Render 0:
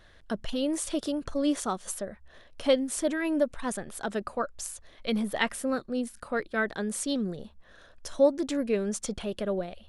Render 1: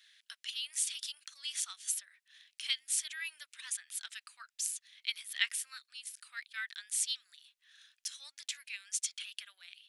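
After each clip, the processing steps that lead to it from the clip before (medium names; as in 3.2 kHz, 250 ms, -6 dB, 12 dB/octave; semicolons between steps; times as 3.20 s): inverse Chebyshev high-pass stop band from 490 Hz, stop band 70 dB; trim +2 dB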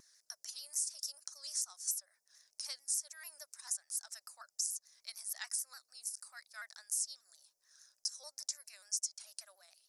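FFT filter 290 Hz 0 dB, 590 Hz +14 dB, 3.2 kHz -29 dB, 5.3 kHz +6 dB, 8 kHz +2 dB; compression 3:1, threshold -39 dBFS, peak gain reduction 10 dB; vibrato with a chosen wave saw down 6.8 Hz, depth 100 cents; trim +3.5 dB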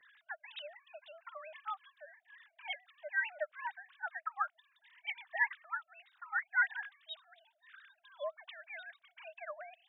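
formants replaced by sine waves; trim +1.5 dB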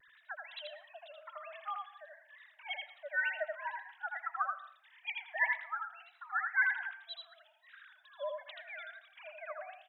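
wow and flutter 88 cents; delay 81 ms -3.5 dB; reverberation RT60 0.45 s, pre-delay 102 ms, DRR 15 dB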